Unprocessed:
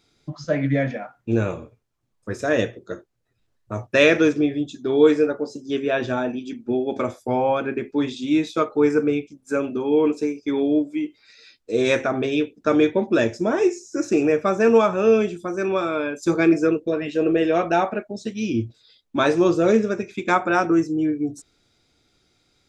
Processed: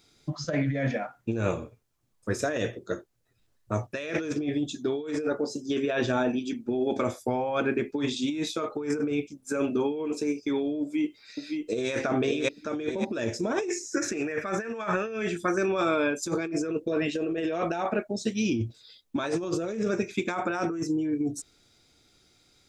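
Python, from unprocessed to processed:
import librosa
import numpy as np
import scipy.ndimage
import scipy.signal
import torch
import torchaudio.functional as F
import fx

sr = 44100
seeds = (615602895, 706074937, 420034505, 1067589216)

y = fx.echo_throw(x, sr, start_s=10.81, length_s=1.11, ms=560, feedback_pct=40, wet_db=-7.0)
y = fx.peak_eq(y, sr, hz=1800.0, db=14.0, octaves=0.77, at=(13.7, 15.58))
y = fx.high_shelf(y, sr, hz=5600.0, db=7.5)
y = fx.over_compress(y, sr, threshold_db=-24.0, ratio=-1.0)
y = y * librosa.db_to_amplitude(-4.0)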